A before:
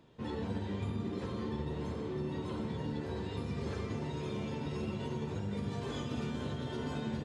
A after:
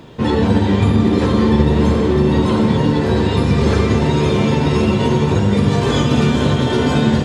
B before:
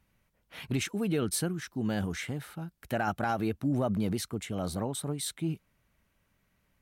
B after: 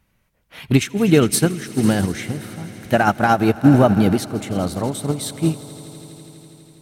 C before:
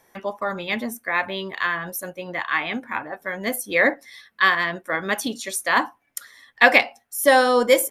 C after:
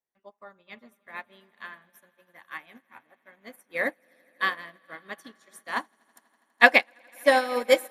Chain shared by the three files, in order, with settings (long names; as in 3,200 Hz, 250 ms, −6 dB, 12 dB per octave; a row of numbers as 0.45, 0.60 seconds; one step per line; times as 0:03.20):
echo that builds up and dies away 82 ms, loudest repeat 5, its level −18 dB
expander for the loud parts 2.5 to 1, over −34 dBFS
normalise the peak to −1.5 dBFS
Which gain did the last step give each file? +24.0, +18.5, 0.0 decibels